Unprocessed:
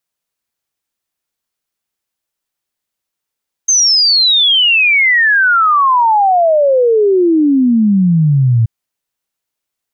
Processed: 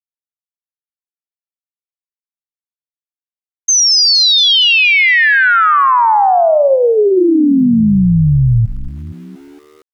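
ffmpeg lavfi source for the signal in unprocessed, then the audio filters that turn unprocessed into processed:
-f lavfi -i "aevalsrc='0.447*clip(min(t,4.98-t)/0.01,0,1)*sin(2*PI*6400*4.98/log(110/6400)*(exp(log(110/6400)*t/4.98)-1))':duration=4.98:sample_rate=44100"
-filter_complex "[0:a]asplit=7[link_01][link_02][link_03][link_04][link_05][link_06][link_07];[link_02]adelay=232,afreqshift=-100,volume=-11.5dB[link_08];[link_03]adelay=464,afreqshift=-200,volume=-17.2dB[link_09];[link_04]adelay=696,afreqshift=-300,volume=-22.9dB[link_10];[link_05]adelay=928,afreqshift=-400,volume=-28.5dB[link_11];[link_06]adelay=1160,afreqshift=-500,volume=-34.2dB[link_12];[link_07]adelay=1392,afreqshift=-600,volume=-39.9dB[link_13];[link_01][link_08][link_09][link_10][link_11][link_12][link_13]amix=inputs=7:normalize=0,aeval=exprs='val(0)*gte(abs(val(0)),0.00794)':channel_layout=same"

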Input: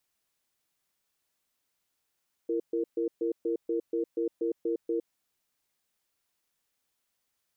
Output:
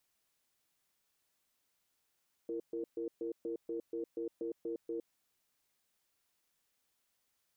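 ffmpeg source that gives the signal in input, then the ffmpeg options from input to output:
-f lavfi -i "aevalsrc='0.0355*(sin(2*PI*337*t)+sin(2*PI*463*t))*clip(min(mod(t,0.24),0.11-mod(t,0.24))/0.005,0,1)':duration=2.61:sample_rate=44100"
-af "alimiter=level_in=9dB:limit=-24dB:level=0:latency=1:release=10,volume=-9dB"

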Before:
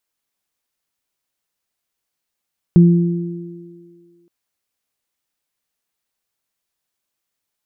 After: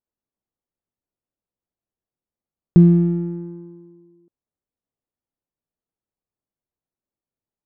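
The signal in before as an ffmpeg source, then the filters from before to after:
-f lavfi -i "aevalsrc='0.631*pow(10,-3*t/1.54)*sin(2*PI*172*t)+0.178*pow(10,-3*t/2.36)*sin(2*PI*344*t)':duration=1.52:sample_rate=44100"
-af "adynamicsmooth=sensitivity=3:basefreq=670"

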